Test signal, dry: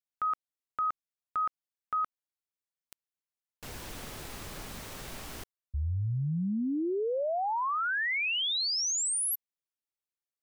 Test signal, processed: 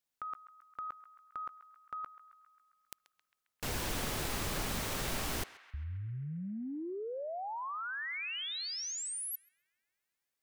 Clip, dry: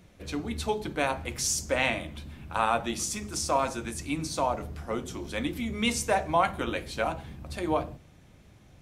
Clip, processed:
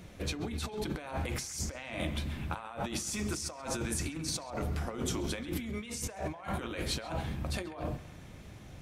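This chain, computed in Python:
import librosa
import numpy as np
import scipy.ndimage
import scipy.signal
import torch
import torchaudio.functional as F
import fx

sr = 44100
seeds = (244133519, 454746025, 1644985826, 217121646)

y = fx.over_compress(x, sr, threshold_db=-38.0, ratio=-1.0)
y = fx.echo_banded(y, sr, ms=134, feedback_pct=70, hz=1800.0, wet_db=-14)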